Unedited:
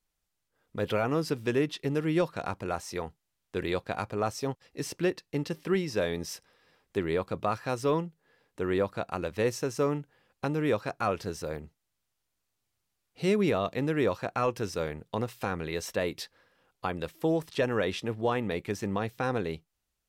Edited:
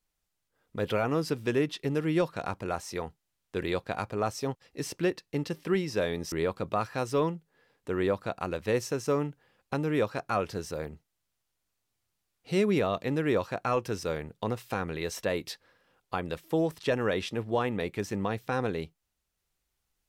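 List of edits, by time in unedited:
6.32–7.03 cut

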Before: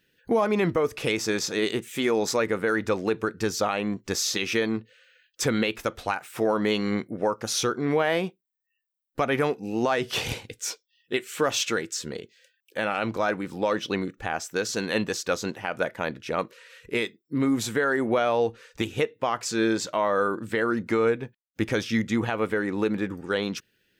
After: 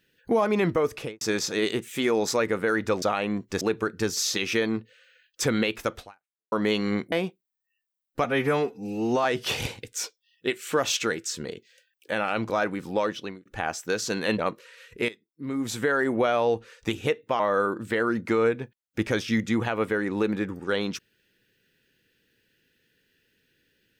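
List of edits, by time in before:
0.93–1.21 studio fade out
3.02–3.58 move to 4.17
5.99–6.52 fade out exponential
7.12–8.12 cut
9.24–9.91 stretch 1.5×
13.65–14.12 fade out linear
15.05–16.31 cut
17.01–17.76 fade in quadratic, from -15.5 dB
19.32–20.01 cut

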